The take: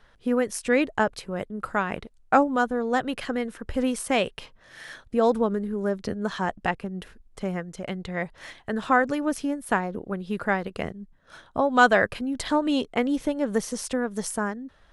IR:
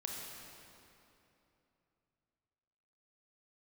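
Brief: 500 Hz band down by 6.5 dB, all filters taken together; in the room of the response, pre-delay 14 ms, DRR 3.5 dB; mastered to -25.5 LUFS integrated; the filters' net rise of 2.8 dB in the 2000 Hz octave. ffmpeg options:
-filter_complex "[0:a]equalizer=f=500:t=o:g=-8,equalizer=f=2k:t=o:g=4.5,asplit=2[a][b];[1:a]atrim=start_sample=2205,adelay=14[c];[b][c]afir=irnorm=-1:irlink=0,volume=-3.5dB[d];[a][d]amix=inputs=2:normalize=0,volume=0.5dB"

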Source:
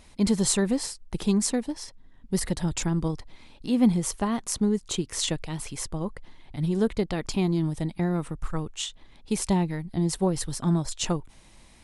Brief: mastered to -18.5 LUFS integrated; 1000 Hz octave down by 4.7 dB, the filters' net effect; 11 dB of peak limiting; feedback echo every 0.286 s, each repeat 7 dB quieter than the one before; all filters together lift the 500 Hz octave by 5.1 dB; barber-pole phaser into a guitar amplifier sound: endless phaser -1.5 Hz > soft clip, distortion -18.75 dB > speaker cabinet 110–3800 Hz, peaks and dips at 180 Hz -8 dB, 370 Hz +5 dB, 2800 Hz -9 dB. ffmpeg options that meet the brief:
-filter_complex "[0:a]equalizer=f=500:t=o:g=5,equalizer=f=1k:t=o:g=-8.5,alimiter=limit=-18.5dB:level=0:latency=1,aecho=1:1:286|572|858|1144|1430:0.447|0.201|0.0905|0.0407|0.0183,asplit=2[a][b];[b]afreqshift=-1.5[c];[a][c]amix=inputs=2:normalize=1,asoftclip=threshold=-23dB,highpass=110,equalizer=f=180:t=q:w=4:g=-8,equalizer=f=370:t=q:w=4:g=5,equalizer=f=2.8k:t=q:w=4:g=-9,lowpass=f=3.8k:w=0.5412,lowpass=f=3.8k:w=1.3066,volume=16.5dB"

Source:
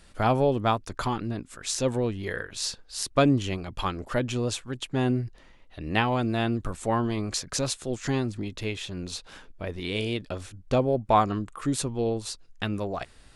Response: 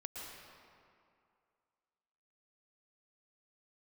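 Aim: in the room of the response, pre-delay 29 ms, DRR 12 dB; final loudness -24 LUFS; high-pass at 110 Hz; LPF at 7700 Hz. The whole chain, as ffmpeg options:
-filter_complex "[0:a]highpass=110,lowpass=7.7k,asplit=2[a][b];[1:a]atrim=start_sample=2205,adelay=29[c];[b][c]afir=irnorm=-1:irlink=0,volume=-10.5dB[d];[a][d]amix=inputs=2:normalize=0,volume=4.5dB"

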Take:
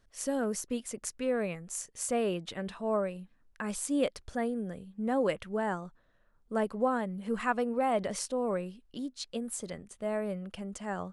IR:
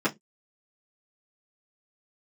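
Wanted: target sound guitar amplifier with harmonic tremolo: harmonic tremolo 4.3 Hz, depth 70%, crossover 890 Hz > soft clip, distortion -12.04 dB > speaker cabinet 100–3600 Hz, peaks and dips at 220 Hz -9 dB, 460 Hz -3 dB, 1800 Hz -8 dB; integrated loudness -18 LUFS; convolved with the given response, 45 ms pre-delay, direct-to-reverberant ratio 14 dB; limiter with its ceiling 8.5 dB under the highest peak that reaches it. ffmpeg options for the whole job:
-filter_complex "[0:a]alimiter=level_in=0.5dB:limit=-24dB:level=0:latency=1,volume=-0.5dB,asplit=2[a][b];[1:a]atrim=start_sample=2205,adelay=45[c];[b][c]afir=irnorm=-1:irlink=0,volume=-26dB[d];[a][d]amix=inputs=2:normalize=0,acrossover=split=890[e][f];[e]aeval=exprs='val(0)*(1-0.7/2+0.7/2*cos(2*PI*4.3*n/s))':c=same[g];[f]aeval=exprs='val(0)*(1-0.7/2-0.7/2*cos(2*PI*4.3*n/s))':c=same[h];[g][h]amix=inputs=2:normalize=0,asoftclip=threshold=-33.5dB,highpass=100,equalizer=f=220:t=q:w=4:g=-9,equalizer=f=460:t=q:w=4:g=-3,equalizer=f=1.8k:t=q:w=4:g=-8,lowpass=f=3.6k:w=0.5412,lowpass=f=3.6k:w=1.3066,volume=27dB"

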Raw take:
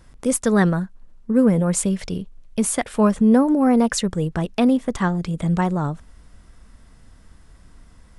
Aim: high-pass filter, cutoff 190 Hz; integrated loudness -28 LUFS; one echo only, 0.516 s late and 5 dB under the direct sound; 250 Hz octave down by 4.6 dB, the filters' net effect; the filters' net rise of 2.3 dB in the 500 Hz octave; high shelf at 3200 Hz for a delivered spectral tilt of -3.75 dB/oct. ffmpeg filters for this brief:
-af "highpass=190,equalizer=f=250:t=o:g=-4,equalizer=f=500:t=o:g=3.5,highshelf=f=3.2k:g=8,aecho=1:1:516:0.562,volume=-8.5dB"

